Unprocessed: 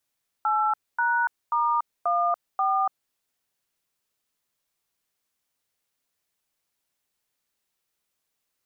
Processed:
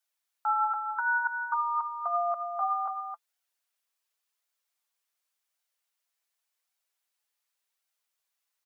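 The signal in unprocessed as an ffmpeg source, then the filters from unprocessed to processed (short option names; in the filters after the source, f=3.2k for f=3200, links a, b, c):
-f lavfi -i "aevalsrc='0.0708*clip(min(mod(t,0.535),0.287-mod(t,0.535))/0.002,0,1)*(eq(floor(t/0.535),0)*(sin(2*PI*852*mod(t,0.535))+sin(2*PI*1336*mod(t,0.535)))+eq(floor(t/0.535),1)*(sin(2*PI*941*mod(t,0.535))+sin(2*PI*1477*mod(t,0.535)))+eq(floor(t/0.535),2)*(sin(2*PI*941*mod(t,0.535))+sin(2*PI*1209*mod(t,0.535)))+eq(floor(t/0.535),3)*(sin(2*PI*697*mod(t,0.535))+sin(2*PI*1209*mod(t,0.535)))+eq(floor(t/0.535),4)*(sin(2*PI*770*mod(t,0.535))+sin(2*PI*1209*mod(t,0.535))))':d=2.675:s=44100"
-filter_complex "[0:a]highpass=690,flanger=delay=1.3:depth=4.8:regen=43:speed=0.89:shape=sinusoidal,asplit=2[a][b];[b]aecho=0:1:266:0.447[c];[a][c]amix=inputs=2:normalize=0"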